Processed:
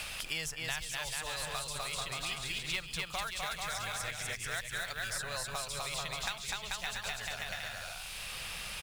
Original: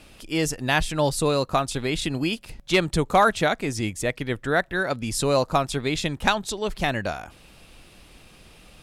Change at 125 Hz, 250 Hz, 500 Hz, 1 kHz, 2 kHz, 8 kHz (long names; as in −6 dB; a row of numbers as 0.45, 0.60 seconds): −18.0, −26.0, −21.5, −15.5, −9.0, −5.0 decibels